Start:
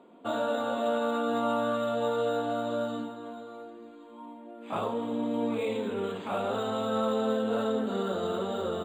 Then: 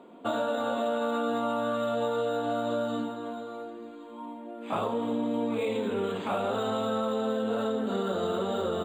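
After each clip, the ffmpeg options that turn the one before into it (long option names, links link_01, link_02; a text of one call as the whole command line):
ffmpeg -i in.wav -af "acompressor=threshold=-30dB:ratio=6,volume=4.5dB" out.wav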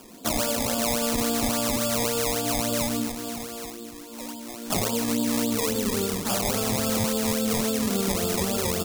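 ffmpeg -i in.wav -af "acrusher=samples=21:mix=1:aa=0.000001:lfo=1:lforange=21:lforate=3.6,bass=frequency=250:gain=9,treble=frequency=4000:gain=13" out.wav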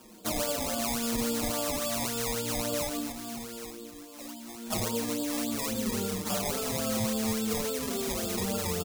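ffmpeg -i in.wav -filter_complex "[0:a]asplit=2[link_01][link_02];[link_02]adelay=5.9,afreqshift=-0.84[link_03];[link_01][link_03]amix=inputs=2:normalize=1,volume=-2.5dB" out.wav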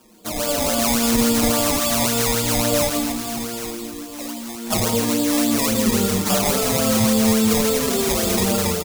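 ffmpeg -i in.wav -af "dynaudnorm=framelen=170:gausssize=5:maxgain=12dB,aecho=1:1:164:0.376" out.wav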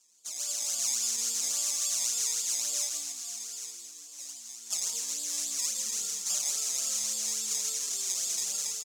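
ffmpeg -i in.wav -af "bandpass=frequency=6600:width_type=q:width=3.4:csg=0" out.wav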